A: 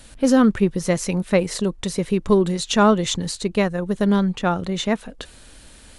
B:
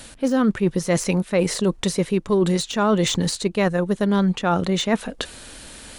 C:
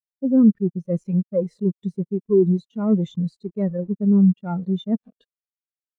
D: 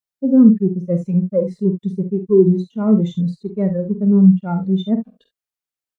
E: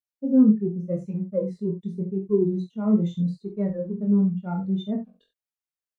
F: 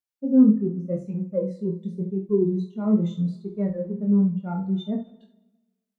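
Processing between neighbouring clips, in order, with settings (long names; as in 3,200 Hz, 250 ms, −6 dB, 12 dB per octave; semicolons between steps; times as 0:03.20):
de-essing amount 55%; low-shelf EQ 98 Hz −9 dB; reversed playback; downward compressor 6 to 1, threshold −24 dBFS, peak gain reduction 12 dB; reversed playback; level +7.5 dB
one-sided soft clipper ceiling −17.5 dBFS; bit reduction 5 bits; every bin expanded away from the loudest bin 2.5 to 1; level +3.5 dB
ambience of single reflections 47 ms −9 dB, 69 ms −12.5 dB; level +4 dB
chorus effect 0.83 Hz, delay 19.5 ms, depth 4.6 ms; level −4.5 dB
dense smooth reverb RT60 1.2 s, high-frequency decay 0.9×, DRR 15.5 dB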